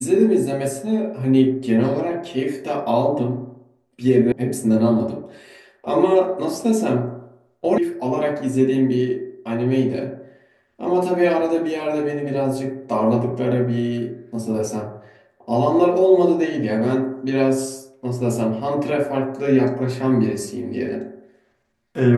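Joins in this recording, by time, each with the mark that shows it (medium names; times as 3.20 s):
4.32 s: sound stops dead
7.78 s: sound stops dead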